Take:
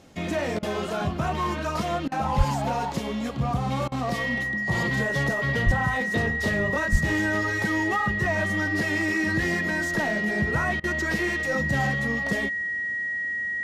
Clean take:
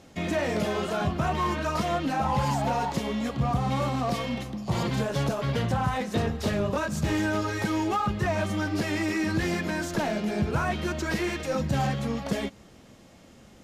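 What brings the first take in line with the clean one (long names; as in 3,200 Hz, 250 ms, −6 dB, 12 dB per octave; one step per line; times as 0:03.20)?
notch filter 1,900 Hz, Q 30
0:02.37–0:02.49: high-pass filter 140 Hz 24 dB per octave
0:05.65–0:05.77: high-pass filter 140 Hz 24 dB per octave
0:06.91–0:07.03: high-pass filter 140 Hz 24 dB per octave
repair the gap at 0:00.59/0:02.08/0:03.88/0:10.80, 37 ms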